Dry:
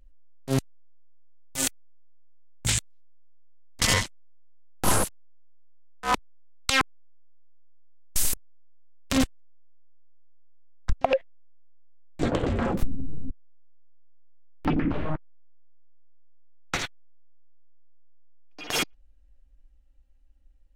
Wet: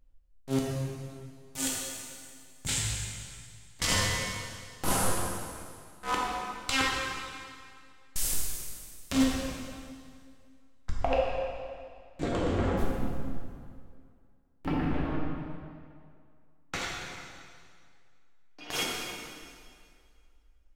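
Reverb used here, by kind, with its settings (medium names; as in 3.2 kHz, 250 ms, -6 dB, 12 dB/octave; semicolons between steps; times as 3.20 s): plate-style reverb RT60 2.2 s, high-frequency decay 0.9×, DRR -4 dB; trim -8 dB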